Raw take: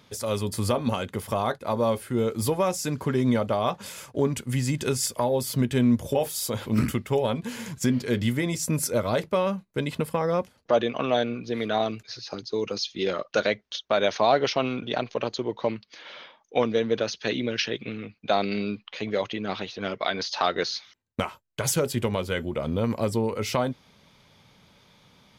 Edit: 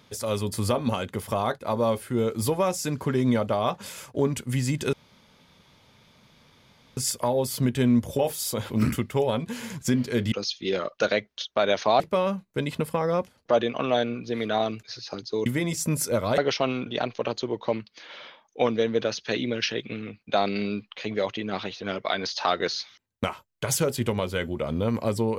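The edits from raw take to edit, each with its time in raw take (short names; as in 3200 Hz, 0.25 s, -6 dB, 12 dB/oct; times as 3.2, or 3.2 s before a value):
4.93 insert room tone 2.04 s
8.28–9.2 swap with 12.66–14.34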